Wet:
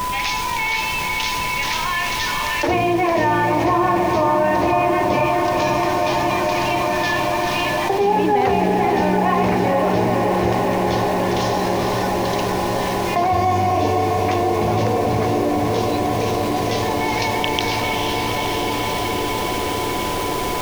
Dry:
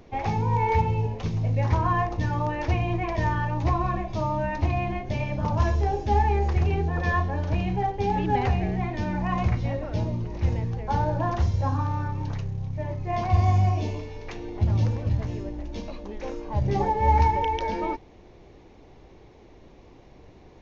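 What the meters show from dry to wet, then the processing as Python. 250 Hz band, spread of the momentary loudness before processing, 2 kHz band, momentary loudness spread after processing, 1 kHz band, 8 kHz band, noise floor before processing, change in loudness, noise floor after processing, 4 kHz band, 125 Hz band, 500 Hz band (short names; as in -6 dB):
+10.0 dB, 9 LU, +13.0 dB, 4 LU, +9.0 dB, n/a, -51 dBFS, +7.0 dB, -22 dBFS, +19.5 dB, -2.0 dB, +12.0 dB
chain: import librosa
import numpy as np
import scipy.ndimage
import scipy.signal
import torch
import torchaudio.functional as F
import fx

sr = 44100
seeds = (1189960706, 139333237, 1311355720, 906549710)

p1 = fx.low_shelf(x, sr, hz=210.0, db=11.5)
p2 = fx.filter_lfo_highpass(p1, sr, shape='square', hz=0.19, low_hz=400.0, high_hz=3100.0, q=1.3)
p3 = fx.dmg_noise_colour(p2, sr, seeds[0], colour='pink', level_db=-52.0)
p4 = fx.quant_dither(p3, sr, seeds[1], bits=8, dither='none')
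p5 = p3 + (p4 * librosa.db_to_amplitude(-8.0))
p6 = p5 + 10.0 ** (-41.0 / 20.0) * np.sin(2.0 * np.pi * 1000.0 * np.arange(len(p5)) / sr)
p7 = fx.echo_diffused(p6, sr, ms=502, feedback_pct=80, wet_db=-6.0)
y = fx.env_flatten(p7, sr, amount_pct=70)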